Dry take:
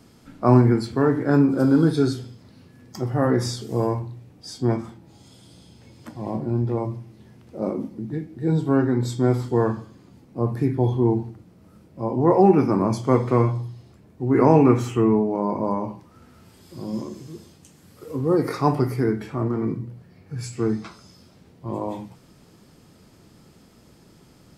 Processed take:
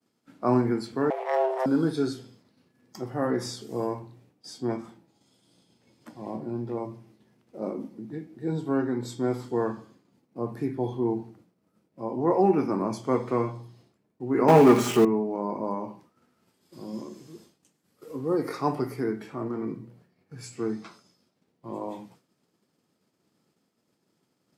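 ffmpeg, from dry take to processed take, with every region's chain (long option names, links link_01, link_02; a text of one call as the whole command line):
ffmpeg -i in.wav -filter_complex "[0:a]asettb=1/sr,asplit=3[link_01][link_02][link_03];[link_01]atrim=end=1.104[link_04];[link_02]atrim=start=1.1:end=1.66,asetpts=PTS-STARTPTS,afade=type=in:duration=0.004:curve=qsin,afade=type=out:start_time=0.556:duration=0.004:curve=qsin,aeval=exprs='if(lt(val(0),0),0.251*val(0),val(0))':channel_layout=same,equalizer=frequency=2900:width_type=o:width=0.43:gain=4.5,afreqshift=390[link_05];[link_03]atrim=start=1.656[link_06];[link_04][link_05]acrossfade=duration=0.004:curve1=hsin:curve2=qsin[link_07];[link_07][link_06]acrossfade=duration=0.004:curve1=qsin:curve2=hsin,asettb=1/sr,asplit=3[link_08][link_09][link_10];[link_08]atrim=end=14.484[link_11];[link_09]atrim=start=14.48:end=15.05,asetpts=PTS-STARTPTS,afade=type=in:duration=0.004:curve=qsin,afade=type=out:start_time=0.566:duration=0.004:curve=qsin,aeval=exprs='val(0)+0.5*0.0376*sgn(val(0))':channel_layout=same,aecho=1:1:4.9:0.5,atrim=end_sample=25137,acontrast=89[link_12];[link_10]atrim=start=15.046[link_13];[link_11][link_12]acrossfade=duration=0.004:curve1=hsin:curve2=qsin[link_14];[link_14][link_13]acrossfade=duration=0.004:curve1=qsin:curve2=hsin,agate=range=-33dB:threshold=-42dB:ratio=3:detection=peak,highpass=190,volume=-5.5dB" out.wav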